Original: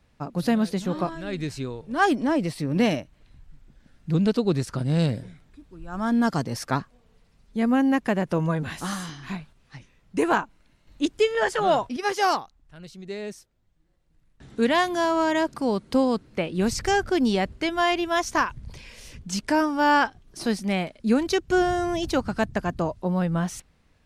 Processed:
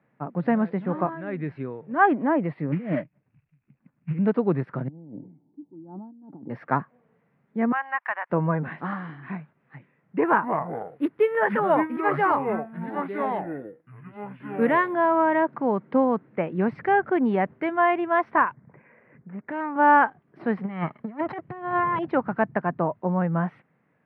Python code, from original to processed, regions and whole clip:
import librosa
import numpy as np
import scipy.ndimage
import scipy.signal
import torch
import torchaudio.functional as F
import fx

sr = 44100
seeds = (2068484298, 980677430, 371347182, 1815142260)

y = fx.chain(x, sr, fx.spec_expand(power=1.7),
    fx.over_compress(threshold_db=-25.0, ratio=-0.5),
    fx.sample_hold(seeds[0], rate_hz=2600.0, jitter_pct=20), at=(2.72, 4.19))
y = fx.chain(y, sr, fx.formant_cascade(vowel='u'),
    fx.over_compress(threshold_db=-41.0, ratio=-1.0), at=(4.88, 6.5))
y = fx.chain(y, sr, fx.highpass(hz=960.0, slope=24),
    fx.leveller(passes=1), at=(7.72, 8.3))
y = fx.chain(y, sr, fx.notch(hz=730.0, q=5.5),
    fx.echo_pitch(ms=168, semitones=-6, count=2, db_per_echo=-6.0),
    fx.resample_bad(factor=4, down='none', up='zero_stuff'), at=(10.26, 14.94))
y = fx.chain(y, sr, fx.steep_lowpass(hz=2100.0, slope=36),
    fx.low_shelf(hz=170.0, db=-4.0),
    fx.tube_stage(drive_db=28.0, bias=0.55), at=(18.53, 19.76))
y = fx.chain(y, sr, fx.lower_of_two(delay_ms=0.97),
    fx.peak_eq(hz=75.0, db=4.0, octaves=2.3),
    fx.over_compress(threshold_db=-27.0, ratio=-0.5), at=(20.57, 21.99))
y = scipy.signal.sosfilt(scipy.signal.ellip(3, 1.0, 50, [140.0, 2000.0], 'bandpass', fs=sr, output='sos'), y)
y = fx.dynamic_eq(y, sr, hz=950.0, q=1.5, threshold_db=-38.0, ratio=4.0, max_db=5)